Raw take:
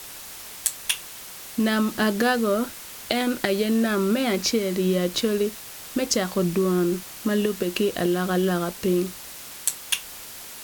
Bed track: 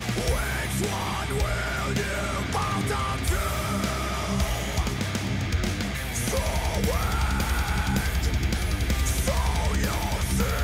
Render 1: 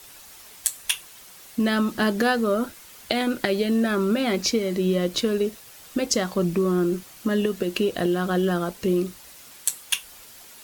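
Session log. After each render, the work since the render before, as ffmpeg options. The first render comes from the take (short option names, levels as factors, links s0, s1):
-af "afftdn=nr=8:nf=-40"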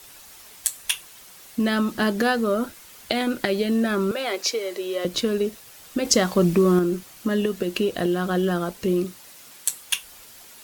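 -filter_complex "[0:a]asettb=1/sr,asplit=3[s0][s1][s2];[s0]atrim=end=4.114[s3];[s1]atrim=start=4.11:end=5.05,asetpts=PTS-STARTPTS,afade=t=in:d=0.004:c=qsin,afade=t=out:st=0.936:d=0.004:c=qsin,highpass=f=400:w=0.5412,highpass=f=400:w=1.3066[s4];[s2]atrim=start=5.046[s5];[s3][s4]acrossfade=d=0.004:c1=hsin:c2=qsin[s6];[s6][s5]acrossfade=d=0.004:c1=qsin:c2=hsin,asettb=1/sr,asplit=3[s7][s8][s9];[s7]atrim=end=9.044[s10];[s8]atrim=start=9.04:end=9.69,asetpts=PTS-STARTPTS,afade=t=in:d=0.004:c=qsin,afade=t=out:st=0.646:d=0.004:c=qsin,highpass=100[s11];[s9]atrim=start=9.686[s12];[s10][s11]acrossfade=d=0.004:c1=hsin:c2=qsin[s13];[s13][s12]acrossfade=d=0.004:c1=qsin:c2=hsin,asplit=3[s14][s15][s16];[s14]atrim=end=6.052[s17];[s15]atrim=start=6.048:end=6.792,asetpts=PTS-STARTPTS,volume=1.68[s18];[s16]atrim=start=6.788[s19];[s17][s18]acrossfade=d=0.004:c1=hsin:c2=hsin[s20];[s20][s19]acrossfade=d=0.004:c1=hsin:c2=hsin"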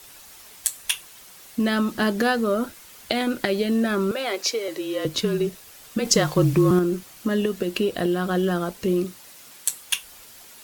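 -filter_complex "[0:a]asettb=1/sr,asplit=3[s0][s1][s2];[s0]atrim=end=4.684[s3];[s1]atrim=start=4.68:end=6.71,asetpts=PTS-STARTPTS,afade=t=in:d=0.004:c=qsin,afade=t=out:st=2.026:d=0.004:c=qsin,afreqshift=-33[s4];[s2]atrim=start=6.706[s5];[s3][s4]acrossfade=d=0.004:c1=hsin:c2=qsin[s6];[s6][s5]acrossfade=d=0.004:c1=qsin:c2=hsin,asettb=1/sr,asplit=3[s7][s8][s9];[s7]atrim=end=7.704[s10];[s8]atrim=start=7.7:end=8.29,asetpts=PTS-STARTPTS,afade=t=in:d=0.004:c=qsin,afade=t=out:st=0.586:d=0.004:c=qsin,bandreject=f=6400:w=12[s11];[s9]atrim=start=8.286[s12];[s10][s11]acrossfade=d=0.004:c1=hsin:c2=qsin[s13];[s13][s12]acrossfade=d=0.004:c1=qsin:c2=hsin"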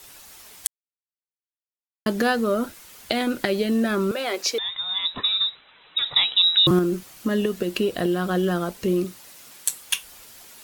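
-filter_complex "[0:a]asettb=1/sr,asplit=3[s0][s1][s2];[s0]atrim=end=4.584[s3];[s1]atrim=start=4.58:end=6.67,asetpts=PTS-STARTPTS,afade=t=in:d=0.004:c=qsin,afade=t=out:st=2.086:d=0.004:c=qsin,lowpass=f=3400:t=q:w=0.5098,lowpass=f=3400:t=q:w=0.6013,lowpass=f=3400:t=q:w=0.9,lowpass=f=3400:t=q:w=2.563,afreqshift=-4000[s4];[s2]atrim=start=6.666[s5];[s3][s4]acrossfade=d=0.004:c1=hsin:c2=qsin[s6];[s6][s5]acrossfade=d=0.004:c1=qsin:c2=hsin,asplit=3[s7][s8][s9];[s7]atrim=end=0.67,asetpts=PTS-STARTPTS,afade=t=out:st=0.666:d=0.004:c=hsin[s10];[s8]atrim=start=0.67:end=2.06,asetpts=PTS-STARTPTS,volume=0[s11];[s9]atrim=start=2.06,asetpts=PTS-STARTPTS,afade=t=in:d=0.004:c=hsin[s12];[s10][s11][s12]concat=n=3:v=0:a=1"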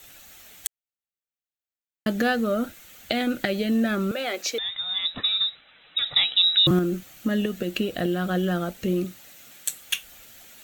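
-af "equalizer=f=400:t=o:w=0.33:g=-7,equalizer=f=1000:t=o:w=0.33:g=-12,equalizer=f=5000:t=o:w=0.33:g=-8,equalizer=f=10000:t=o:w=0.33:g=-10"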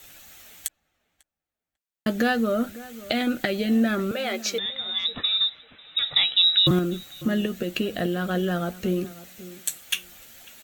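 -filter_complex "[0:a]asplit=2[s0][s1];[s1]adelay=13,volume=0.251[s2];[s0][s2]amix=inputs=2:normalize=0,asplit=2[s3][s4];[s4]adelay=546,lowpass=f=1400:p=1,volume=0.141,asplit=2[s5][s6];[s6]adelay=546,lowpass=f=1400:p=1,volume=0.17[s7];[s3][s5][s7]amix=inputs=3:normalize=0"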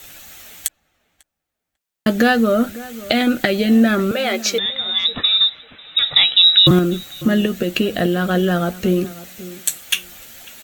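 -af "volume=2.51,alimiter=limit=0.891:level=0:latency=1"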